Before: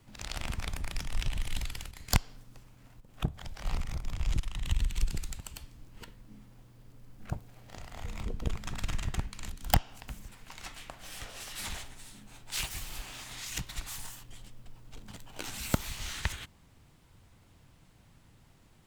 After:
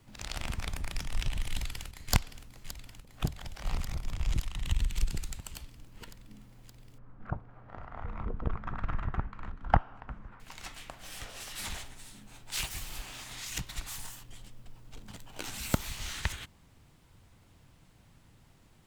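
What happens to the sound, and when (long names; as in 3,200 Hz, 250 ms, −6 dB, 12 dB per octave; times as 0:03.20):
0:01.50–0:02.13: delay throw 570 ms, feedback 80%, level −9.5 dB
0:06.98–0:10.40: low-pass with resonance 1,300 Hz, resonance Q 2.4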